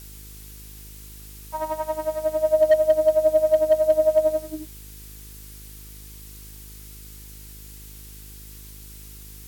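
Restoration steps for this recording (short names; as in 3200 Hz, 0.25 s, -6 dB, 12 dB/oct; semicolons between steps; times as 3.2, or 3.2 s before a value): clip repair -10 dBFS; de-hum 51.8 Hz, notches 9; noise print and reduce 24 dB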